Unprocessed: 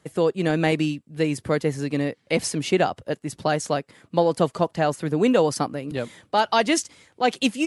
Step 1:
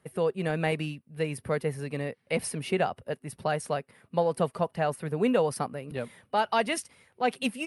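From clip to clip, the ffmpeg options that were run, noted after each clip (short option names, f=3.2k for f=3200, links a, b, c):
-af "superequalizer=6b=0.398:13b=0.562:14b=0.501:15b=0.282:16b=1.41,volume=-5.5dB"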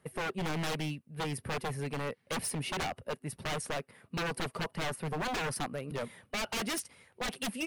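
-af "aeval=exprs='0.0376*(abs(mod(val(0)/0.0376+3,4)-2)-1)':c=same"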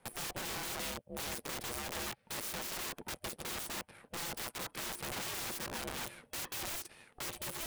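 -af "aeval=exprs='0.0398*(cos(1*acos(clip(val(0)/0.0398,-1,1)))-cos(1*PI/2))+0.00631*(cos(8*acos(clip(val(0)/0.0398,-1,1)))-cos(8*PI/2))':c=same,aeval=exprs='(mod(53.1*val(0)+1,2)-1)/53.1':c=same,aeval=exprs='val(0)*sin(2*PI*350*n/s)':c=same,volume=3.5dB"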